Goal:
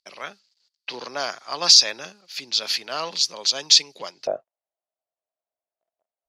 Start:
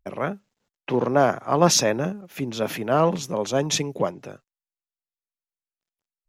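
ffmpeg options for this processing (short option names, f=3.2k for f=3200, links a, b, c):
-af "asetnsamples=n=441:p=0,asendcmd='4.27 bandpass f 650',bandpass=f=4.6k:t=q:w=7.8:csg=0,alimiter=level_in=24.5dB:limit=-1dB:release=50:level=0:latency=1,volume=-1dB"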